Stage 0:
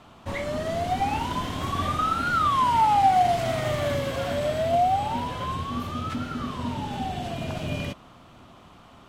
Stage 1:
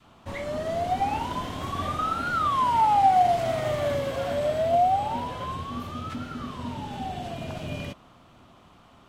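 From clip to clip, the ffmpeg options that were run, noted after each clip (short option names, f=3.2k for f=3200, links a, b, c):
-af "adynamicequalizer=threshold=0.0251:dfrequency=610:dqfactor=0.93:tfrequency=610:tqfactor=0.93:attack=5:release=100:ratio=0.375:range=2.5:mode=boostabove:tftype=bell,volume=-4dB"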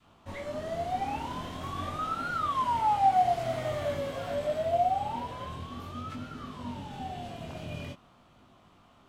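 -af "flanger=delay=19:depth=6.8:speed=0.47,volume=-2.5dB"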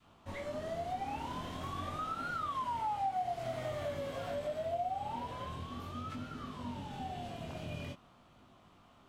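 -af "acompressor=threshold=-34dB:ratio=2.5,volume=-2.5dB"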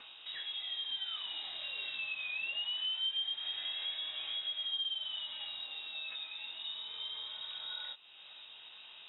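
-af "lowpass=f=3.3k:t=q:w=0.5098,lowpass=f=3.3k:t=q:w=0.6013,lowpass=f=3.3k:t=q:w=0.9,lowpass=f=3.3k:t=q:w=2.563,afreqshift=-3900,acompressor=mode=upward:threshold=-41dB:ratio=2.5,volume=-1dB"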